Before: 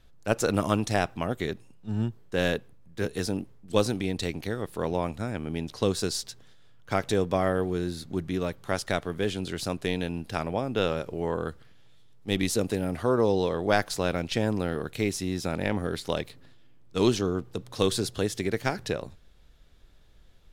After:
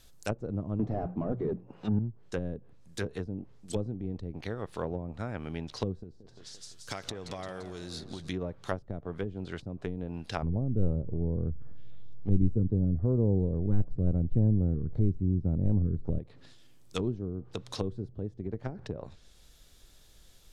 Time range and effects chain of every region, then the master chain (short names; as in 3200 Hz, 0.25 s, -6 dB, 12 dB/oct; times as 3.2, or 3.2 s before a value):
0.79–1.99 notches 60/120/180 Hz + overdrive pedal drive 30 dB, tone 1100 Hz, clips at -7.5 dBFS
6.03–8.29 compressor 5:1, threshold -33 dBFS + warbling echo 0.171 s, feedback 54%, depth 186 cents, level -12 dB
10.42–16.19 tilt -3.5 dB/oct + stepped notch 7.4 Hz 640–7700 Hz
whole clip: tone controls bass -2 dB, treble +15 dB; treble ducked by the level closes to 300 Hz, closed at -23 dBFS; dynamic EQ 310 Hz, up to -6 dB, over -41 dBFS, Q 0.72